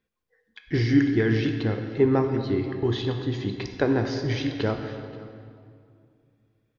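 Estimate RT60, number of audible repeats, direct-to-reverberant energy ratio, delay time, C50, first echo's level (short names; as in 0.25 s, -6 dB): 2.3 s, 1, 5.0 dB, 0.529 s, 6.5 dB, -20.5 dB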